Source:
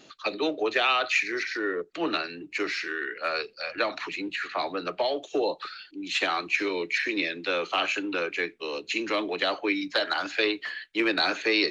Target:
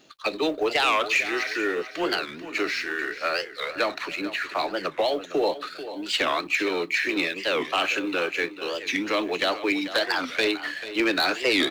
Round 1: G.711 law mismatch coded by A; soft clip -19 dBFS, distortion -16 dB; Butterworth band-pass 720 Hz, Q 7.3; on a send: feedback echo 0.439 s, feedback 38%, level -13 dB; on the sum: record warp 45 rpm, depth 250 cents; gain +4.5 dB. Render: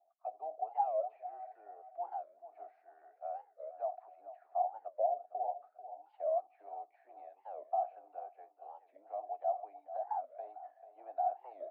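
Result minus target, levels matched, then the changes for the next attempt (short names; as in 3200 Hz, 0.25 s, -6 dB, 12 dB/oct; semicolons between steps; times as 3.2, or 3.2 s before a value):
1000 Hz band +7.0 dB
remove: Butterworth band-pass 720 Hz, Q 7.3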